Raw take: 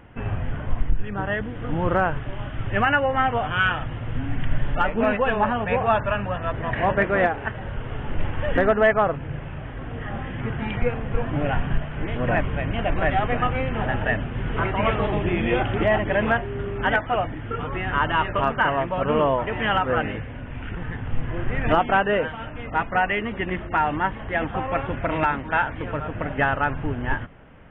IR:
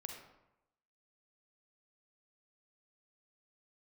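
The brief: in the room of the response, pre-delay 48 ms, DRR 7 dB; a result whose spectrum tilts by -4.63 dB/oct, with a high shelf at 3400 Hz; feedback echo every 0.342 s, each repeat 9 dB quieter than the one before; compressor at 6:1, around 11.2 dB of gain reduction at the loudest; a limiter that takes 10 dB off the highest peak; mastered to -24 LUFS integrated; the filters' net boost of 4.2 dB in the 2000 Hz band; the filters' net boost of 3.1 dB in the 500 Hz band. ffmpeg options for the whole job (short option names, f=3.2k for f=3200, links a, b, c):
-filter_complex "[0:a]equalizer=f=500:t=o:g=3.5,equalizer=f=2k:t=o:g=4,highshelf=f=3.4k:g=5,acompressor=threshold=-24dB:ratio=6,alimiter=limit=-20.5dB:level=0:latency=1,aecho=1:1:342|684|1026|1368:0.355|0.124|0.0435|0.0152,asplit=2[a][b];[1:a]atrim=start_sample=2205,adelay=48[c];[b][c]afir=irnorm=-1:irlink=0,volume=-4dB[d];[a][d]amix=inputs=2:normalize=0,volume=5.5dB"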